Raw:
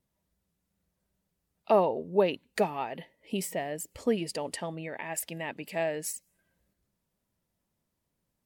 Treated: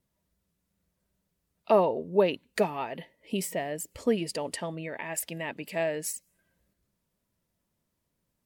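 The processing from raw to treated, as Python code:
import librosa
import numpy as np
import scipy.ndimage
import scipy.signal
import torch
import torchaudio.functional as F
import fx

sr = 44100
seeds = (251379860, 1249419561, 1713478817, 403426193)

y = fx.notch(x, sr, hz=790.0, q=12.0)
y = y * librosa.db_to_amplitude(1.5)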